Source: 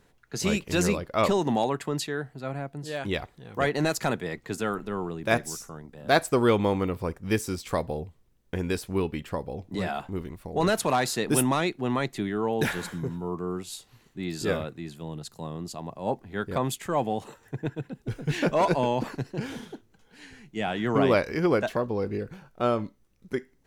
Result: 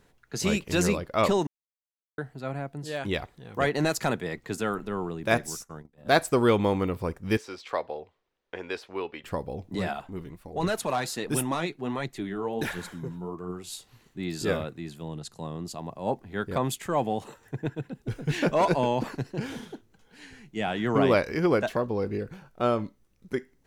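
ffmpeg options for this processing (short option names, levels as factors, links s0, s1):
-filter_complex "[0:a]asettb=1/sr,asplit=3[s0][s1][s2];[s0]atrim=end=5.474[s3];[s1]atrim=start=5.47:end=6.2,asetpts=PTS-STARTPTS,afade=t=in:d=0.004:c=qsin,afade=t=out:st=0.726:d=0.004:c=qsin,agate=range=0.126:threshold=0.00708:ratio=16:release=100:detection=peak[s4];[s2]atrim=start=6.196[s5];[s3][s4]acrossfade=d=0.004:c1=hsin:c2=qsin[s6];[s6][s5]acrossfade=d=0.004:c1=qsin:c2=hsin,asettb=1/sr,asplit=3[s7][s8][s9];[s7]atrim=end=7.374[s10];[s8]atrim=start=7.37:end=9.24,asetpts=PTS-STARTPTS,afade=t=in:d=0.004:c=qsin,afade=t=out:st=1.866:d=0.004:c=qsin,acrossover=split=390 4900:gain=0.0794 1 0.0708[s11][s12][s13];[s11][s12][s13]amix=inputs=3:normalize=0[s14];[s9]atrim=start=9.236[s15];[s10][s14]acrossfade=d=0.004:c1=hsin:c2=qsin[s16];[s16][s15]acrossfade=d=0.004:c1=qsin:c2=hsin,asettb=1/sr,asplit=3[s17][s18][s19];[s17]atrim=end=9.934[s20];[s18]atrim=start=9.93:end=13.64,asetpts=PTS-STARTPTS,afade=t=in:d=0.004:c=qsin,afade=t=out:st=3.706:d=0.004:c=qsin,flanger=delay=0.2:depth=7.1:regen=49:speed=1.4:shape=triangular[s21];[s19]atrim=start=13.636[s22];[s20][s21]acrossfade=d=0.004:c1=hsin:c2=qsin[s23];[s23][s22]acrossfade=d=0.004:c1=qsin:c2=hsin,asettb=1/sr,asplit=3[s24][s25][s26];[s24]atrim=end=15.084[s27];[s25]atrim=start=15.08:end=15.65,asetpts=PTS-STARTPTS,afade=t=in:d=0.004:c=qsin,afade=t=out:st=0.566:d=0.004:c=qsin,lowpass=f=11000:w=0.5412,lowpass=f=11000:w=1.3066[s28];[s26]atrim=start=15.646[s29];[s27][s28]acrossfade=d=0.004:c1=hsin:c2=qsin[s30];[s30][s29]acrossfade=d=0.004:c1=qsin:c2=hsin,asplit=3[s31][s32][s33];[s31]atrim=end=1.47,asetpts=PTS-STARTPTS,afade=t=out:st=1.466:d=0.004:c=hsin[s34];[s32]atrim=start=1.47:end=2.18,asetpts=PTS-STARTPTS,volume=0[s35];[s33]atrim=start=2.18,asetpts=PTS-STARTPTS,afade=t=in:d=0.004:c=hsin[s36];[s34][s35][s36]concat=n=3:v=0:a=1"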